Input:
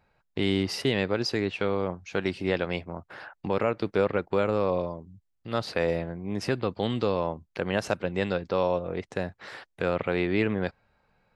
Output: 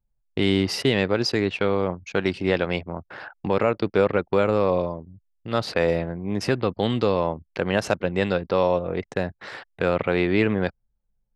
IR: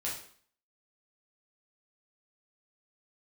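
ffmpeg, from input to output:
-af "acontrast=24,anlmdn=0.398"

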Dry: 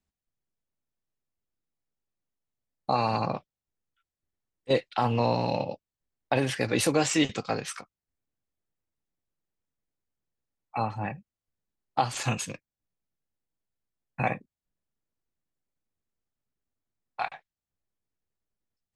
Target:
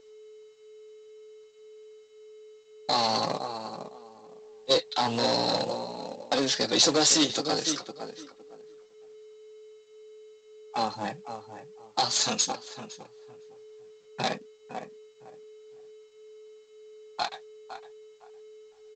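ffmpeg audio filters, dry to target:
ffmpeg -i in.wav -filter_complex "[0:a]asplit=2[link_01][link_02];[link_02]adelay=509,lowpass=frequency=1900:poles=1,volume=-11dB,asplit=2[link_03][link_04];[link_04]adelay=509,lowpass=frequency=1900:poles=1,volume=0.2,asplit=2[link_05][link_06];[link_06]adelay=509,lowpass=frequency=1900:poles=1,volume=0.2[link_07];[link_03][link_05][link_07]amix=inputs=3:normalize=0[link_08];[link_01][link_08]amix=inputs=2:normalize=0,aeval=exprs='0.316*(cos(1*acos(clip(val(0)/0.316,-1,1)))-cos(1*PI/2))+0.0631*(cos(5*acos(clip(val(0)/0.316,-1,1)))-cos(5*PI/2))+0.0316*(cos(8*acos(clip(val(0)/0.316,-1,1)))-cos(8*PI/2))':channel_layout=same,highpass=230,aeval=exprs='val(0)+0.00631*sin(2*PI*430*n/s)':channel_layout=same,highshelf=frequency=3200:width_type=q:width=3:gain=7,aresample=16000,acrusher=bits=4:mode=log:mix=0:aa=0.000001,aresample=44100,flanger=delay=3.5:depth=4.3:regen=-37:speed=0.48:shape=triangular" out.wav

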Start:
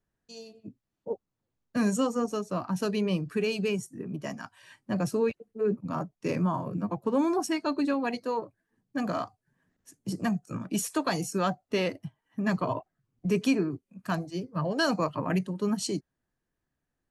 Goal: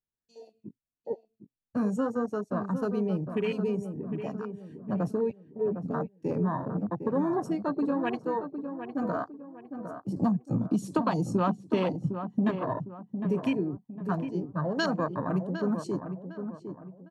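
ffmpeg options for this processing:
ffmpeg -i in.wav -filter_complex "[0:a]afwtdn=0.02,asettb=1/sr,asplit=3[link_01][link_02][link_03];[link_01]atrim=end=10.164[link_04];[link_02]atrim=start=10.16:end=12.51,asetpts=PTS-STARTPTS,afade=type=in:duration=0.004:curve=qsin,afade=type=out:start_time=2.346:duration=0.004:curve=qsin,equalizer=frequency=125:width_type=o:width=1:gain=10,equalizer=frequency=250:width_type=o:width=1:gain=8,equalizer=frequency=500:width_type=o:width=1:gain=3,equalizer=frequency=1000:width_type=o:width=1:gain=12,equalizer=frequency=2000:width_type=o:width=1:gain=-5,equalizer=frequency=4000:width_type=o:width=1:gain=12,equalizer=frequency=8000:width_type=o:width=1:gain=5[link_05];[link_03]atrim=start=12.506[link_06];[link_04][link_05]acrossfade=duration=0.004:curve1=hsin:curve2=qsin[link_07];[link_07][link_06]acrossfade=duration=0.004:curve1=qsin:curve2=hsin,acompressor=threshold=-23dB:ratio=6,asplit=2[link_08][link_09];[link_09]adelay=757,lowpass=frequency=1500:poles=1,volume=-8dB,asplit=2[link_10][link_11];[link_11]adelay=757,lowpass=frequency=1500:poles=1,volume=0.38,asplit=2[link_12][link_13];[link_13]adelay=757,lowpass=frequency=1500:poles=1,volume=0.38,asplit=2[link_14][link_15];[link_15]adelay=757,lowpass=frequency=1500:poles=1,volume=0.38[link_16];[link_08][link_10][link_12][link_14][link_16]amix=inputs=5:normalize=0" out.wav

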